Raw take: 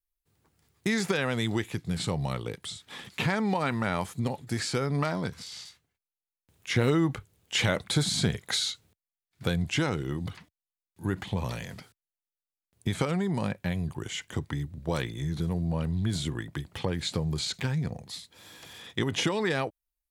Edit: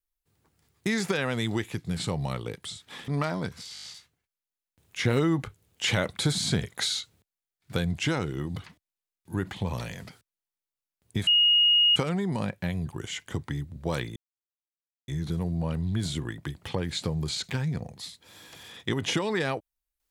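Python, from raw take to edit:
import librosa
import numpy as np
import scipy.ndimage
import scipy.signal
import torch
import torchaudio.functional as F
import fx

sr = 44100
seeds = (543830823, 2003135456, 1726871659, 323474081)

y = fx.edit(x, sr, fx.cut(start_s=3.08, length_s=1.81),
    fx.stutter(start_s=5.55, slice_s=0.02, count=6),
    fx.insert_tone(at_s=12.98, length_s=0.69, hz=2870.0, db=-17.0),
    fx.insert_silence(at_s=15.18, length_s=0.92), tone=tone)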